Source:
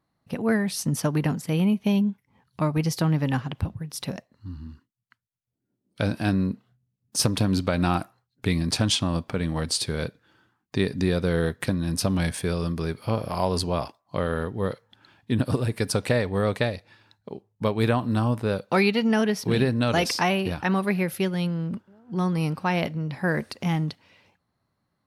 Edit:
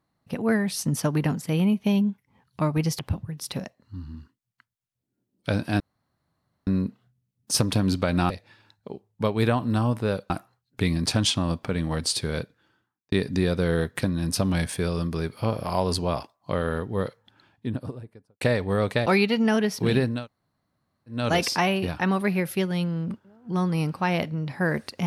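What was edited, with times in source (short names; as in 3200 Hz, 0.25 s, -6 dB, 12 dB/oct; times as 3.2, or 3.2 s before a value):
2.99–3.51 cut
6.32 insert room tone 0.87 s
10–10.77 fade out
14.68–16.06 studio fade out
16.71–18.71 move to 7.95
19.81 insert room tone 1.02 s, crossfade 0.24 s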